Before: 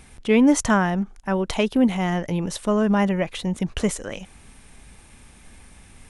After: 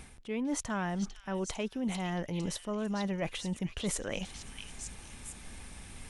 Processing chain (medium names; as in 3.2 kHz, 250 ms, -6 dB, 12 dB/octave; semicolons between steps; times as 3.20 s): reverse; compression 12:1, threshold -31 dBFS, peak gain reduction 19 dB; reverse; repeats whose band climbs or falls 450 ms, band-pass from 3.8 kHz, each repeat 0.7 oct, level -2 dB